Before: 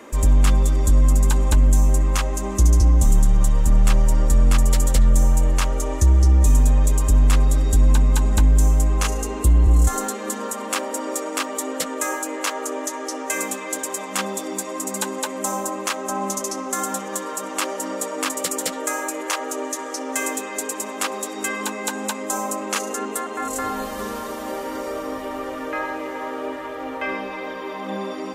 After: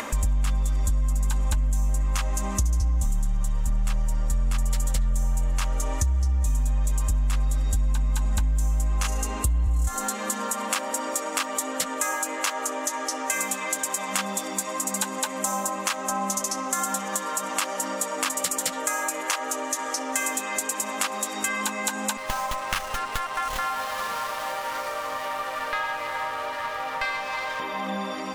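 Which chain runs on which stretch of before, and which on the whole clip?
22.17–27.60 s: high-pass 680 Hz + sliding maximum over 5 samples
whole clip: upward compressor, threshold -22 dBFS; peaking EQ 370 Hz -14 dB 0.84 oct; compression 6:1, threshold -22 dBFS; trim +1 dB

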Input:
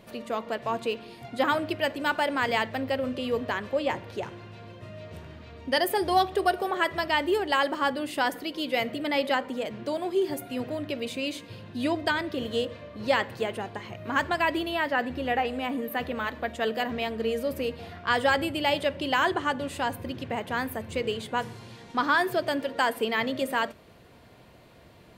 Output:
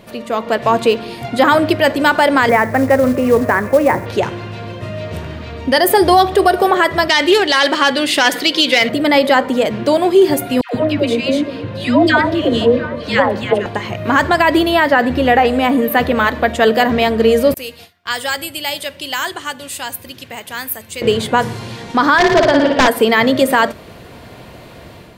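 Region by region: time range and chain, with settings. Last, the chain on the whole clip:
2.49–4.06 s: steep low-pass 2.3 kHz 48 dB/octave + companded quantiser 6-bit
7.09–8.89 s: self-modulated delay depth 0.072 ms + frequency weighting D
10.61–13.66 s: low-pass 2.8 kHz 6 dB/octave + phase dispersion lows, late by 138 ms, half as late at 860 Hz + repeats whose band climbs or falls 231 ms, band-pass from 190 Hz, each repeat 1.4 oct, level -9 dB
17.54–21.02 s: gate with hold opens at -29 dBFS, closes at -40 dBFS + pre-emphasis filter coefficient 0.9
22.18–22.88 s: integer overflow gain 17 dB + distance through air 170 m + flutter echo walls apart 9.8 m, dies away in 0.84 s
whole clip: dynamic bell 2.7 kHz, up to -5 dB, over -44 dBFS, Q 3.2; level rider gain up to 7 dB; loudness maximiser +11 dB; trim -1 dB

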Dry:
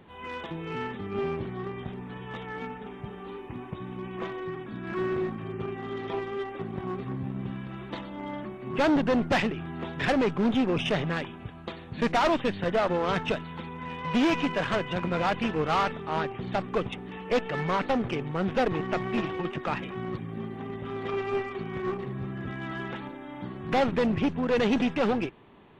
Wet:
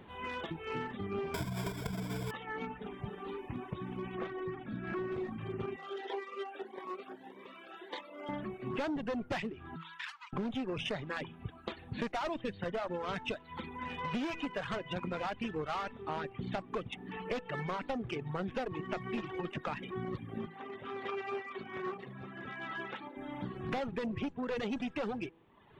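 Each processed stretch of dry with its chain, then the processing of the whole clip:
1.34–2.31 s: square wave that keeps the level + rippled EQ curve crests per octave 1.7, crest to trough 13 dB
4.15–5.12 s: treble shelf 4.8 kHz -12 dB + band-stop 1 kHz, Q 16
5.76–8.29 s: high-pass 390 Hz 24 dB/octave + Shepard-style phaser rising 1.7 Hz
9.76–10.33 s: compression 8:1, threshold -33 dBFS + rippled Chebyshev high-pass 920 Hz, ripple 3 dB
20.46–23.17 s: high-pass 560 Hz 6 dB/octave + treble shelf 6.9 kHz -10 dB
whole clip: de-hum 164.5 Hz, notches 6; reverb removal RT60 0.86 s; compression, threshold -34 dBFS

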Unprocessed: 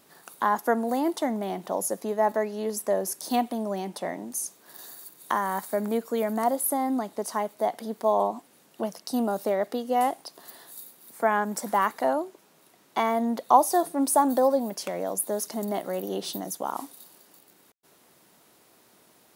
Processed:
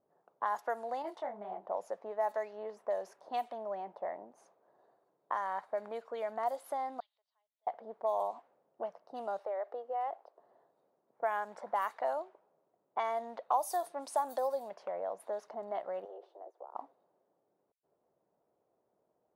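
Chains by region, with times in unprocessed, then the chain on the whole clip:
1.02–1.64 s: bass shelf 340 Hz +5 dB + detune thickener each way 44 cents
7.00–7.67 s: upward compressor, threshold -33 dBFS + Butterworth band-pass 3.8 kHz, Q 2.3
9.39–10.40 s: high-pass 340 Hz 24 dB/octave + compression 2.5:1, threshold -28 dBFS
16.05–16.75 s: steep high-pass 330 Hz 96 dB/octave + compression 8:1, threshold -35 dBFS
whole clip: level-controlled noise filter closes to 330 Hz, open at -18.5 dBFS; compression 2:1, threshold -33 dBFS; resonant low shelf 400 Hz -13.5 dB, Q 1.5; trim -4 dB

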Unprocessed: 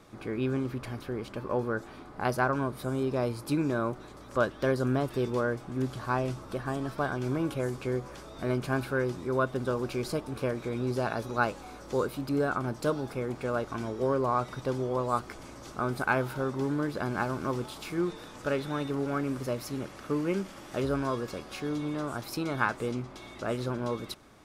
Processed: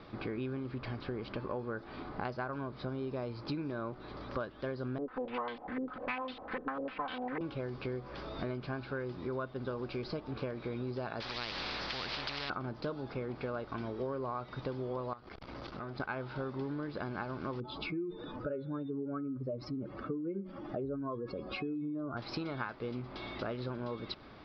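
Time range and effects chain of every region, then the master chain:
4.98–7.41 s: comb filter that takes the minimum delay 3.9 ms + tilt EQ +2 dB/octave + step-sequenced low-pass 10 Hz 400–3500 Hz
11.20–12.50 s: peaking EQ 1.6 kHz -5 dB 2 oct + spectrum-flattening compressor 10:1
15.13–16.00 s: compression 4:1, threshold -41 dBFS + transformer saturation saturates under 640 Hz
17.60–22.17 s: spectral contrast enhancement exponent 2 + de-hum 181.9 Hz, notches 14
whole clip: steep low-pass 5 kHz 72 dB/octave; compression 6:1, threshold -39 dBFS; attacks held to a fixed rise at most 490 dB/s; trim +3.5 dB

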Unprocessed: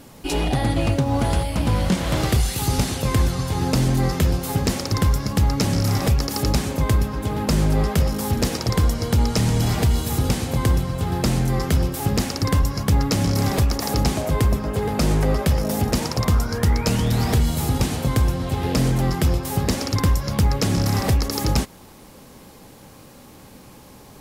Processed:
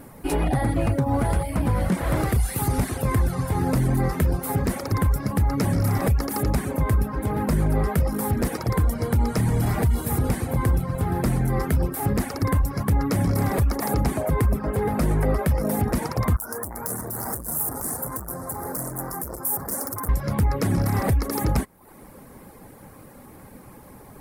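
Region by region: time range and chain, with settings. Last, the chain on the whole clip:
16.36–20.09 s: hard clipper -23 dBFS + Butterworth band-stop 3 kHz, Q 0.59 + tilt EQ +3.5 dB/octave
whole clip: reverb removal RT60 0.57 s; high-order bell 4.4 kHz -11.5 dB; peak limiter -15.5 dBFS; trim +1.5 dB

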